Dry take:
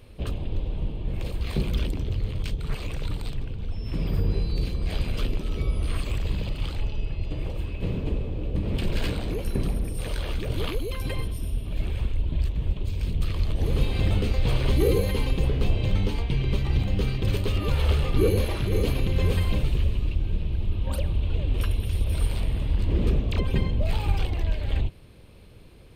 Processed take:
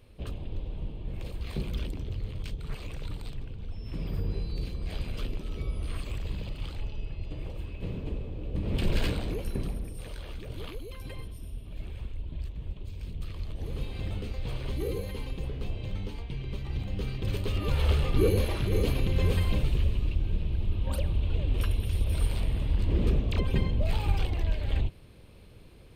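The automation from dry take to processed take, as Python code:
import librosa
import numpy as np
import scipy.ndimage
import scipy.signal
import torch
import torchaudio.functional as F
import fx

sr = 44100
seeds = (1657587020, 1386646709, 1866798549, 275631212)

y = fx.gain(x, sr, db=fx.line((8.43, -7.0), (8.9, 0.0), (10.16, -11.0), (16.53, -11.0), (17.85, -2.5)))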